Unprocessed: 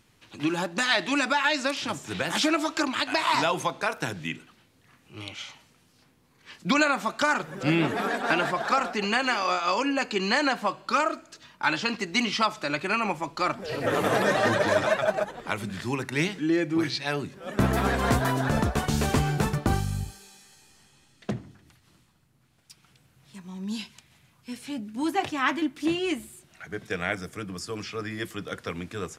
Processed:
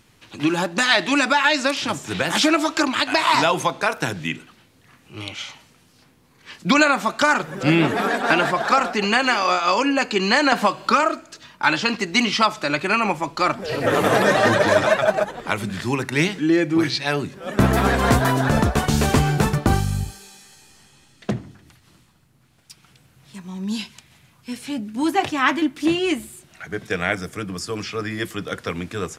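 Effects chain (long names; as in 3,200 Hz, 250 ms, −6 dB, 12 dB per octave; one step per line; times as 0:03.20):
0:10.52–0:11.03: multiband upward and downward compressor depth 100%
level +6.5 dB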